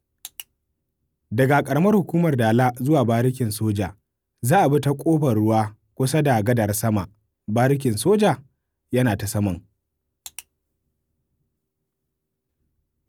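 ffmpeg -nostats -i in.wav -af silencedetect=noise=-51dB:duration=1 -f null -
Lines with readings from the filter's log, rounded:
silence_start: 10.43
silence_end: 13.08 | silence_duration: 2.66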